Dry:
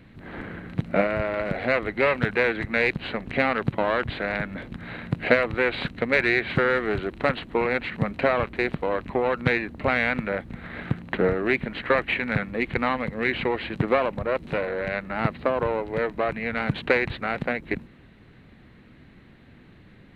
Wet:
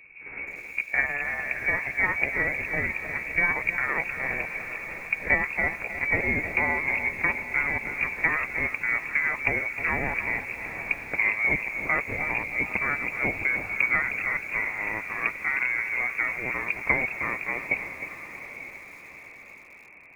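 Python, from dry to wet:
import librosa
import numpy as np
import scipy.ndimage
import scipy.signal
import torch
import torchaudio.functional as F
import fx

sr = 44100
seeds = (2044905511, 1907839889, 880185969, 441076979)

y = fx.pitch_glide(x, sr, semitones=5.5, runs='ending unshifted')
y = fx.peak_eq(y, sr, hz=360.0, db=13.5, octaves=0.37)
y = fx.freq_invert(y, sr, carrier_hz=2600)
y = fx.echo_diffused(y, sr, ms=892, feedback_pct=45, wet_db=-11.5)
y = fx.echo_crushed(y, sr, ms=311, feedback_pct=35, bits=7, wet_db=-10)
y = F.gain(torch.from_numpy(y), -4.0).numpy()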